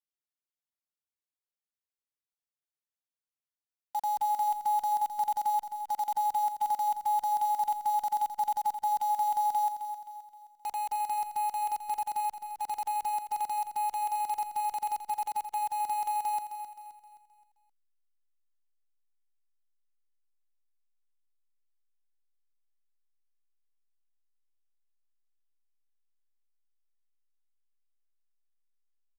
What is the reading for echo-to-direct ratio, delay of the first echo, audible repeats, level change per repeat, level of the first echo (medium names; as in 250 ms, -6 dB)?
-8.5 dB, 262 ms, 4, -7.5 dB, -9.5 dB